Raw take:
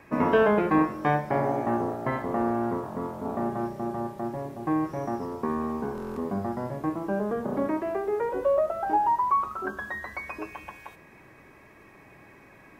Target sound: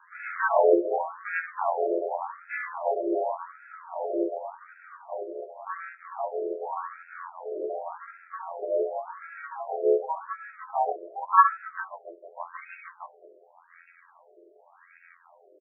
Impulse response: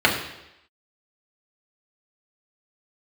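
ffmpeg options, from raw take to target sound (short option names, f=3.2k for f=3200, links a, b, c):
-filter_complex "[0:a]acrossover=split=5800[a][b];[b]adelay=350[c];[a][c]amix=inputs=2:normalize=0,aeval=exprs='val(0)+0.0126*(sin(2*PI*60*n/s)+sin(2*PI*2*60*n/s)/2+sin(2*PI*3*60*n/s)/3+sin(2*PI*4*60*n/s)/4+sin(2*PI*5*60*n/s)/5)':c=same,afftfilt=real='hypot(re,im)*cos(PI*b)':imag='0':win_size=2048:overlap=0.75,atempo=0.82,flanger=delay=18:depth=5.2:speed=0.76,bass=f=250:g=-3,treble=f=4k:g=7,asplit=4[d][e][f][g];[e]asetrate=37084,aresample=44100,atempo=1.18921,volume=-8dB[h];[f]asetrate=52444,aresample=44100,atempo=0.840896,volume=-7dB[i];[g]asetrate=66075,aresample=44100,atempo=0.66742,volume=-12dB[j];[d][h][i][j]amix=inputs=4:normalize=0,aemphasis=mode=reproduction:type=75kf,asplit=2[k][l];[l]aeval=exprs='sgn(val(0))*max(abs(val(0))-0.00668,0)':c=same,volume=-9dB[m];[k][m]amix=inputs=2:normalize=0,afftfilt=real='re*between(b*sr/1024,460*pow(1900/460,0.5+0.5*sin(2*PI*0.88*pts/sr))/1.41,460*pow(1900/460,0.5+0.5*sin(2*PI*0.88*pts/sr))*1.41)':imag='im*between(b*sr/1024,460*pow(1900/460,0.5+0.5*sin(2*PI*0.88*pts/sr))/1.41,460*pow(1900/460,0.5+0.5*sin(2*PI*0.88*pts/sr))*1.41)':win_size=1024:overlap=0.75,volume=7dB"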